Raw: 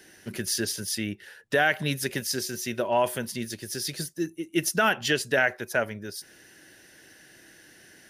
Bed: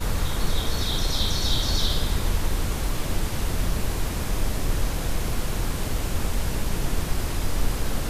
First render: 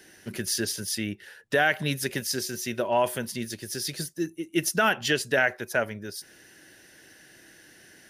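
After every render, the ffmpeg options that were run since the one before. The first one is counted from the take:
ffmpeg -i in.wav -af anull out.wav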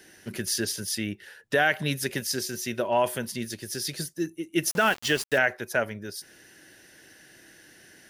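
ffmpeg -i in.wav -filter_complex "[0:a]asettb=1/sr,asplit=3[link_01][link_02][link_03];[link_01]atrim=end=4.694[link_04];[link_02]atrim=start=4.69:end=5.38,asetpts=PTS-STARTPTS,afade=type=in:duration=0.004:curve=qsin,afade=type=out:start_time=0.686:duration=0.004:curve=qsin,aeval=exprs='val(0)*gte(abs(val(0)),0.0224)':channel_layout=same[link_05];[link_03]atrim=start=5.376[link_06];[link_04][link_05]acrossfade=duration=0.004:curve1=hsin:curve2=qsin[link_07];[link_07][link_06]acrossfade=duration=0.004:curve1=qsin:curve2=hsin" out.wav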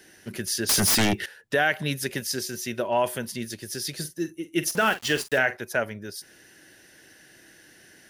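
ffmpeg -i in.wav -filter_complex "[0:a]asettb=1/sr,asplit=3[link_01][link_02][link_03];[link_01]atrim=end=0.694[link_04];[link_02]atrim=start=0.69:end=1.26,asetpts=PTS-STARTPTS,afade=type=in:duration=0.004:curve=qsin,afade=type=out:start_time=0.566:duration=0.004:curve=qsin,aeval=exprs='0.141*sin(PI/2*4.47*val(0)/0.141)':channel_layout=same[link_05];[link_03]atrim=start=1.256[link_06];[link_04][link_05]acrossfade=duration=0.004:curve1=hsin:curve2=qsin[link_07];[link_07][link_06]acrossfade=duration=0.004:curve1=qsin:curve2=hsin,asettb=1/sr,asplit=3[link_08][link_09][link_10];[link_08]atrim=end=3.934[link_11];[link_09]atrim=start=3.93:end=5.57,asetpts=PTS-STARTPTS,afade=type=in:duration=0.004:curve=qsin,afade=type=out:start_time=1.636:duration=0.004:curve=qsin,asplit=2[link_12][link_13];[link_13]adelay=46,volume=-12.5dB[link_14];[link_12][link_14]amix=inputs=2:normalize=0,atrim=end_sample=72324[link_15];[link_10]atrim=start=5.566[link_16];[link_11][link_15]acrossfade=duration=0.004:curve1=hsin:curve2=qsin[link_17];[link_17][link_16]acrossfade=duration=0.004:curve1=qsin:curve2=hsin" out.wav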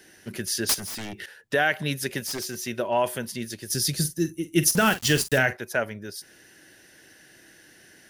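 ffmpeg -i in.wav -filter_complex "[0:a]asplit=3[link_01][link_02][link_03];[link_01]afade=type=out:start_time=0.73:duration=0.02[link_04];[link_02]acompressor=threshold=-33dB:ratio=12:attack=3.2:release=140:knee=1:detection=peak,afade=type=in:start_time=0.73:duration=0.02,afade=type=out:start_time=1.42:duration=0.02[link_05];[link_03]afade=type=in:start_time=1.42:duration=0.02[link_06];[link_04][link_05][link_06]amix=inputs=3:normalize=0,asplit=3[link_07][link_08][link_09];[link_07]afade=type=out:start_time=2.26:duration=0.02[link_10];[link_08]aeval=exprs='0.0562*(abs(mod(val(0)/0.0562+3,4)-2)-1)':channel_layout=same,afade=type=in:start_time=2.26:duration=0.02,afade=type=out:start_time=2.66:duration=0.02[link_11];[link_09]afade=type=in:start_time=2.66:duration=0.02[link_12];[link_10][link_11][link_12]amix=inputs=3:normalize=0,asettb=1/sr,asplit=3[link_13][link_14][link_15];[link_13]atrim=end=3.704[link_16];[link_14]atrim=start=3.7:end=5.53,asetpts=PTS-STARTPTS,afade=type=in:duration=0.004:curve=qsin,afade=type=out:start_time=1.826:duration=0.004:curve=qsin,bass=frequency=250:gain=12,treble=frequency=4000:gain=8[link_17];[link_15]atrim=start=5.526[link_18];[link_16][link_17]acrossfade=duration=0.004:curve1=hsin:curve2=qsin[link_19];[link_19][link_18]acrossfade=duration=0.004:curve1=qsin:curve2=hsin" out.wav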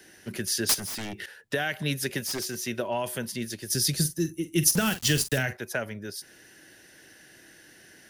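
ffmpeg -i in.wav -filter_complex "[0:a]acrossover=split=230|3000[link_01][link_02][link_03];[link_02]acompressor=threshold=-27dB:ratio=6[link_04];[link_01][link_04][link_03]amix=inputs=3:normalize=0" out.wav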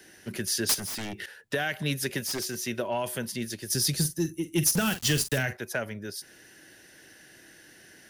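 ffmpeg -i in.wav -af "asoftclip=type=tanh:threshold=-15dB" out.wav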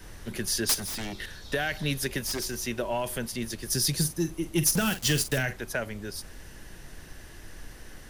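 ffmpeg -i in.wav -i bed.wav -filter_complex "[1:a]volume=-21dB[link_01];[0:a][link_01]amix=inputs=2:normalize=0" out.wav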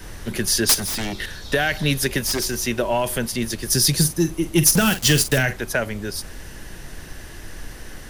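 ffmpeg -i in.wav -af "volume=8.5dB" out.wav

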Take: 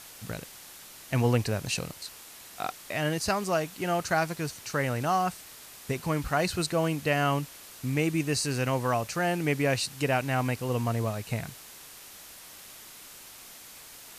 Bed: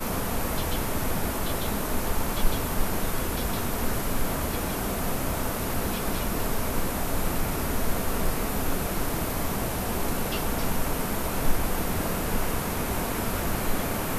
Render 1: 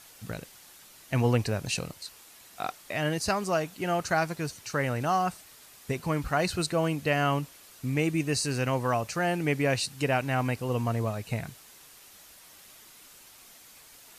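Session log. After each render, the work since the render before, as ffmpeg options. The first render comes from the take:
ffmpeg -i in.wav -af "afftdn=noise_reduction=6:noise_floor=-48" out.wav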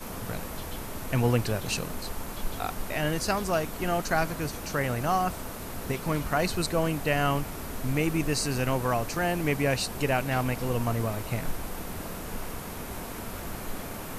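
ffmpeg -i in.wav -i bed.wav -filter_complex "[1:a]volume=-9dB[link_01];[0:a][link_01]amix=inputs=2:normalize=0" out.wav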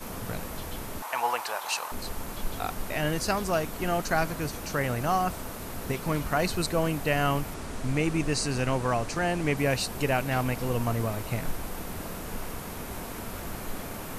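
ffmpeg -i in.wav -filter_complex "[0:a]asettb=1/sr,asplit=3[link_01][link_02][link_03];[link_01]atrim=end=1.024[link_04];[link_02]atrim=start=1.02:end=1.92,asetpts=PTS-STARTPTS,afade=type=in:duration=0.004:curve=qsin,afade=type=out:start_time=0.896:duration=0.004:curve=qsin,highpass=frequency=900:width_type=q:width=3.5[link_05];[link_03]atrim=start=1.916[link_06];[link_04][link_05]acrossfade=duration=0.004:curve1=hsin:curve2=qsin[link_07];[link_07][link_06]acrossfade=duration=0.004:curve1=qsin:curve2=hsin,asettb=1/sr,asplit=3[link_08][link_09][link_10];[link_08]atrim=end=7.544[link_11];[link_09]atrim=start=7.54:end=9.57,asetpts=PTS-STARTPTS,afade=type=in:duration=0.004:curve=qsin,afade=type=out:start_time=2.026:duration=0.004:curve=qsin,lowpass=frequency=9900:width=0.5412,lowpass=frequency=9900:width=1.3066[link_12];[link_10]atrim=start=9.566[link_13];[link_11][link_12]acrossfade=duration=0.004:curve1=hsin:curve2=qsin[link_14];[link_14][link_13]acrossfade=duration=0.004:curve1=qsin:curve2=hsin" out.wav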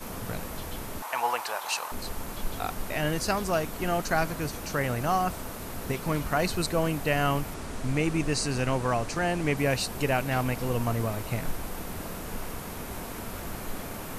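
ffmpeg -i in.wav -af anull out.wav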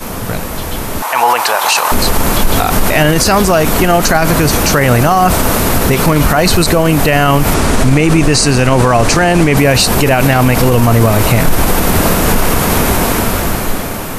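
ffmpeg -i in.wav -af "dynaudnorm=framelen=460:gausssize=7:maxgain=16dB,alimiter=level_in=15.5dB:limit=-1dB:release=50:level=0:latency=1" out.wav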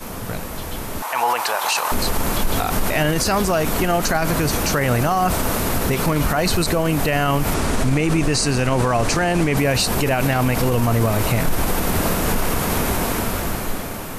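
ffmpeg -i in.wav -af "volume=-9dB" out.wav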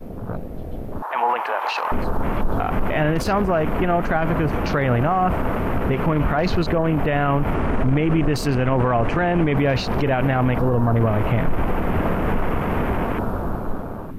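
ffmpeg -i in.wav -af "afwtdn=0.0398,equalizer=frequency=7700:width=0.55:gain=-13.5" out.wav

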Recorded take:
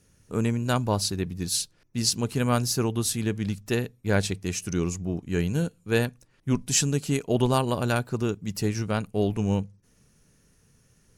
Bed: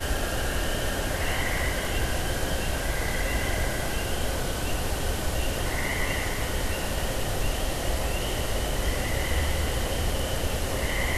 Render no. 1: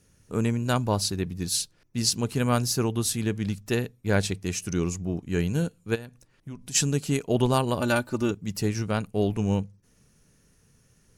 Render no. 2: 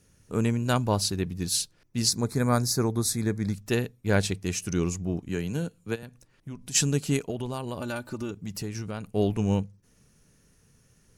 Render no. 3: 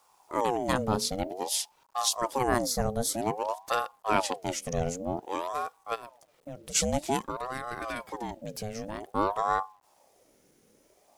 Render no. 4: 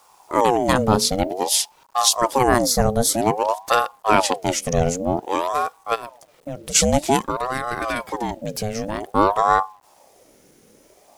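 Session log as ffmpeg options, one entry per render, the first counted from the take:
ffmpeg -i in.wav -filter_complex "[0:a]asplit=3[link_01][link_02][link_03];[link_01]afade=type=out:start_time=5.94:duration=0.02[link_04];[link_02]acompressor=threshold=-37dB:ratio=4:attack=3.2:release=140:knee=1:detection=peak,afade=type=in:start_time=5.94:duration=0.02,afade=type=out:start_time=6.74:duration=0.02[link_05];[link_03]afade=type=in:start_time=6.74:duration=0.02[link_06];[link_04][link_05][link_06]amix=inputs=3:normalize=0,asettb=1/sr,asplit=3[link_07][link_08][link_09];[link_07]atrim=end=7.804[link_10];[link_08]atrim=start=7.8:end=8.31,asetpts=PTS-STARTPTS,afade=type=in:duration=0.004:curve=qsin,afade=type=out:start_time=0.506:duration=0.004:curve=qsin,aecho=1:1:3.4:0.65,atrim=end_sample=22491[link_11];[link_09]atrim=start=8.306[link_12];[link_10][link_11]acrossfade=duration=0.004:curve1=hsin:curve2=qsin[link_13];[link_13][link_12]acrossfade=duration=0.004:curve1=qsin:curve2=hsin" out.wav
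ffmpeg -i in.wav -filter_complex "[0:a]asettb=1/sr,asplit=3[link_01][link_02][link_03];[link_01]atrim=end=2.084[link_04];[link_02]atrim=start=2.08:end=3.54,asetpts=PTS-STARTPTS,afade=type=in:duration=0.004:curve=qsin,afade=type=out:start_time=1.456:duration=0.004:curve=qsin,asuperstop=centerf=2900:order=4:qfactor=2[link_05];[link_03]atrim=start=3.536[link_06];[link_04][link_05]acrossfade=duration=0.004:curve1=hsin:curve2=qsin[link_07];[link_07][link_06]acrossfade=duration=0.004:curve1=qsin:curve2=hsin,asettb=1/sr,asplit=3[link_08][link_09][link_10];[link_08]atrim=end=5.284[link_11];[link_09]atrim=start=5.28:end=6.03,asetpts=PTS-STARTPTS,afade=type=in:duration=0.004:curve=qsin,afade=type=out:start_time=0.746:duration=0.004:curve=qsin,acrossover=split=140|6100[link_12][link_13][link_14];[link_12]acompressor=threshold=-40dB:ratio=4[link_15];[link_13]acompressor=threshold=-27dB:ratio=4[link_16];[link_14]acompressor=threshold=-50dB:ratio=4[link_17];[link_15][link_16][link_17]amix=inputs=3:normalize=0[link_18];[link_10]atrim=start=6.026[link_19];[link_11][link_18]acrossfade=duration=0.004:curve1=hsin:curve2=qsin[link_20];[link_20][link_19]acrossfade=duration=0.004:curve1=qsin:curve2=hsin,asettb=1/sr,asplit=3[link_21][link_22][link_23];[link_21]atrim=end=7.304[link_24];[link_22]atrim=start=7.3:end=9.08,asetpts=PTS-STARTPTS,afade=type=in:duration=0.004:curve=qsin,afade=type=out:start_time=1.776:duration=0.004:curve=qsin,acompressor=threshold=-31dB:ratio=3:attack=3.2:release=140:knee=1:detection=peak[link_25];[link_23]atrim=start=9.076[link_26];[link_24][link_25]acrossfade=duration=0.004:curve1=hsin:curve2=qsin[link_27];[link_27][link_26]acrossfade=duration=0.004:curve1=qsin:curve2=hsin" out.wav
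ffmpeg -i in.wav -af "acrusher=bits=10:mix=0:aa=0.000001,aeval=exprs='val(0)*sin(2*PI*640*n/s+640*0.5/0.52*sin(2*PI*0.52*n/s))':channel_layout=same" out.wav
ffmpeg -i in.wav -af "volume=10.5dB,alimiter=limit=-2dB:level=0:latency=1" out.wav

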